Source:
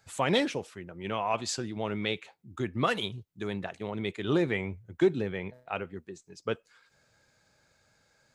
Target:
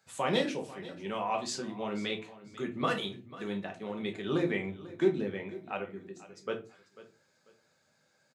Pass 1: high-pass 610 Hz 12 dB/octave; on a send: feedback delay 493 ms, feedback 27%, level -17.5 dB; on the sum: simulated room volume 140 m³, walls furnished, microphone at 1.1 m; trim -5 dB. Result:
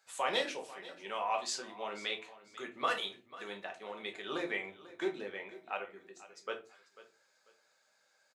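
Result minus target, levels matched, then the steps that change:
125 Hz band -16.0 dB
change: high-pass 150 Hz 12 dB/octave

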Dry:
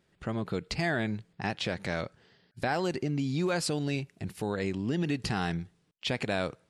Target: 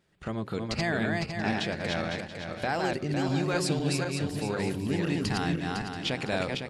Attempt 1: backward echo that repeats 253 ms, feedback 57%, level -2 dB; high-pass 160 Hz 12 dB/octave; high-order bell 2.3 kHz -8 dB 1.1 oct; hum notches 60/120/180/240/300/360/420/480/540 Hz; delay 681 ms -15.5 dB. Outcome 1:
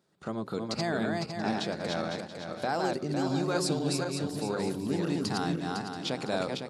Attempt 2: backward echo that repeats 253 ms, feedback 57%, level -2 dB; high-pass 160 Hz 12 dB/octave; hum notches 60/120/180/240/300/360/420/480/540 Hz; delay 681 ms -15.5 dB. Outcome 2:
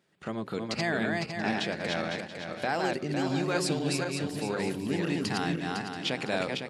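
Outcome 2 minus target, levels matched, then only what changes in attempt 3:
125 Hz band -3.5 dB
remove: high-pass 160 Hz 12 dB/octave

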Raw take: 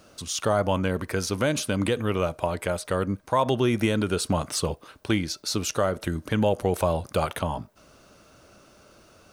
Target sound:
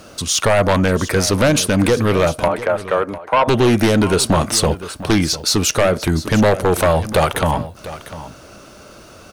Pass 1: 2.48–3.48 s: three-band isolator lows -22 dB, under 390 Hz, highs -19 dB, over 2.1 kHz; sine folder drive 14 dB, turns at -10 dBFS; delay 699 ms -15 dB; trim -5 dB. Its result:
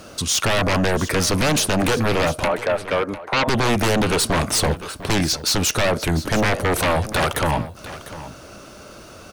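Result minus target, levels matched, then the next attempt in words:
sine folder: distortion +10 dB
2.48–3.48 s: three-band isolator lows -22 dB, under 390 Hz, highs -19 dB, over 2.1 kHz; sine folder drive 14 dB, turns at -3.5 dBFS; delay 699 ms -15 dB; trim -5 dB

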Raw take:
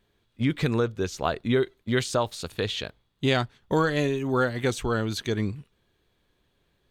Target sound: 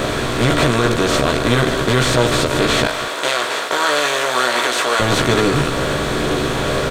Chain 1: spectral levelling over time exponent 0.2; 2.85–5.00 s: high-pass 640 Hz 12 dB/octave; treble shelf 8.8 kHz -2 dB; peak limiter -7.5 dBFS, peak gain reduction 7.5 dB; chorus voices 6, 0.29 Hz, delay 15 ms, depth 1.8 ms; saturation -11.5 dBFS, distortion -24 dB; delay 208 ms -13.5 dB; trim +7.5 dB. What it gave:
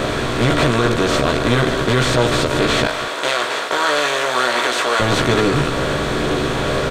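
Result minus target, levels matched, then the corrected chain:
saturation: distortion +12 dB; 8 kHz band -2.5 dB
spectral levelling over time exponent 0.2; 2.85–5.00 s: high-pass 640 Hz 12 dB/octave; treble shelf 8.8 kHz +6 dB; peak limiter -7.5 dBFS, peak gain reduction 7.5 dB; chorus voices 6, 0.29 Hz, delay 15 ms, depth 1.8 ms; saturation -5 dBFS, distortion -35 dB; delay 208 ms -13.5 dB; trim +7.5 dB

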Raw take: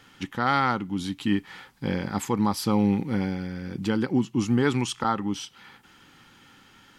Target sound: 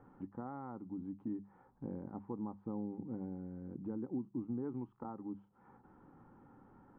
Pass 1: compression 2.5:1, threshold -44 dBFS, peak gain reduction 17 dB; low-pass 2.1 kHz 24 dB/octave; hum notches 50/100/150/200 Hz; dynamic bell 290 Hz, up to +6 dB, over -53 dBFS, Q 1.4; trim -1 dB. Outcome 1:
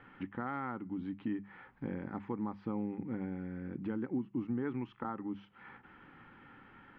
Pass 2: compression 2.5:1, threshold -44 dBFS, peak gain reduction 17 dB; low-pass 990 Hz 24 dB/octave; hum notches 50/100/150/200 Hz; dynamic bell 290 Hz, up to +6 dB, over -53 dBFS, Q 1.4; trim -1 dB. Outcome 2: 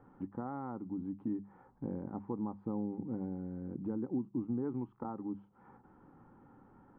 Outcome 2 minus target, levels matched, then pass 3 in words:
compression: peak gain reduction -4 dB
compression 2.5:1, threshold -50.5 dBFS, peak gain reduction 21 dB; low-pass 990 Hz 24 dB/octave; hum notches 50/100/150/200 Hz; dynamic bell 290 Hz, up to +6 dB, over -53 dBFS, Q 1.4; trim -1 dB

